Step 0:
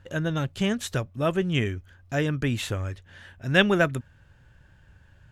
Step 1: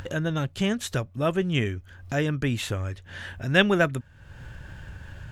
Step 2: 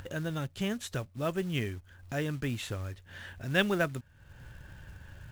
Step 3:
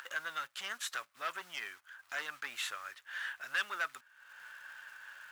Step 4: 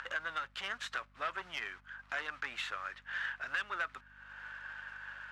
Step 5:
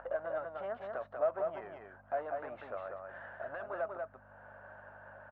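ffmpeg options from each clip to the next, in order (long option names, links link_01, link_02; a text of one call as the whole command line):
ffmpeg -i in.wav -af "acompressor=mode=upward:threshold=-27dB:ratio=2.5" out.wav
ffmpeg -i in.wav -af "acrusher=bits=5:mode=log:mix=0:aa=0.000001,volume=-7.5dB" out.wav
ffmpeg -i in.wav -af "alimiter=limit=-20dB:level=0:latency=1:release=492,asoftclip=type=tanh:threshold=-32dB,highpass=frequency=1300:width_type=q:width=2.1,volume=2.5dB" out.wav
ffmpeg -i in.wav -af "acompressor=threshold=-39dB:ratio=3,aeval=exprs='val(0)+0.000316*(sin(2*PI*50*n/s)+sin(2*PI*2*50*n/s)/2+sin(2*PI*3*50*n/s)/3+sin(2*PI*4*50*n/s)/4+sin(2*PI*5*50*n/s)/5)':channel_layout=same,adynamicsmooth=sensitivity=3.5:basefreq=3100,volume=6dB" out.wav
ffmpeg -i in.wav -filter_complex "[0:a]lowpass=frequency=640:width_type=q:width=5.4,asplit=2[link_01][link_02];[link_02]aecho=0:1:191:0.631[link_03];[link_01][link_03]amix=inputs=2:normalize=0,volume=2dB" out.wav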